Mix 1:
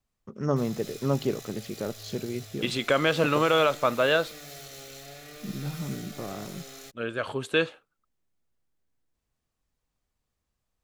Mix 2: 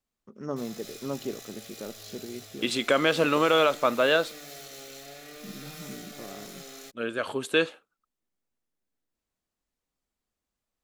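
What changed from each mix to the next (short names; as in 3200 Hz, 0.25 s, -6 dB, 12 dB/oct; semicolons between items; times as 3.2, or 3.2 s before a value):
first voice -7.0 dB; second voice: add high shelf 8000 Hz +9.5 dB; master: add resonant low shelf 170 Hz -6 dB, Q 1.5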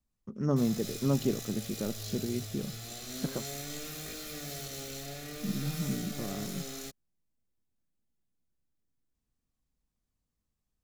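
second voice: muted; master: add tone controls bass +14 dB, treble +4 dB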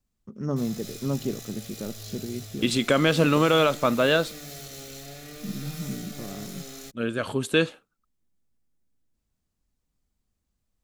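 second voice: unmuted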